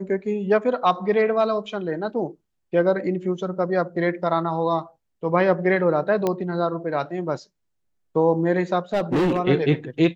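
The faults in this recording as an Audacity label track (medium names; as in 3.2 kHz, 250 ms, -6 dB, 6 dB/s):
6.270000	6.270000	pop -10 dBFS
8.930000	9.400000	clipped -17 dBFS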